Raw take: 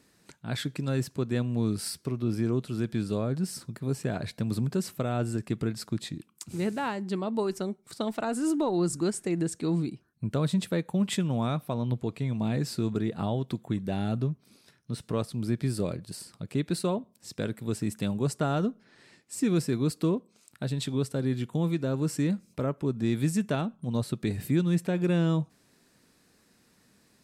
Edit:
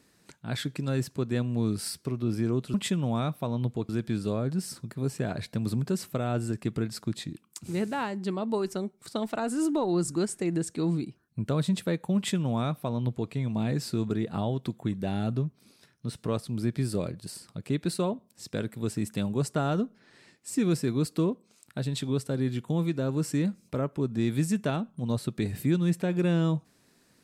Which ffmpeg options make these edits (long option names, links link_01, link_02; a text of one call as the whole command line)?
ffmpeg -i in.wav -filter_complex "[0:a]asplit=3[link_01][link_02][link_03];[link_01]atrim=end=2.742[link_04];[link_02]atrim=start=11.008:end=12.162[link_05];[link_03]atrim=start=2.738[link_06];[link_04][link_05]acrossfade=duration=0.004:curve1=hsin:curve2=hsin[link_07];[link_07][link_06]acrossfade=duration=0.004:curve1=hsin:curve2=hsin" out.wav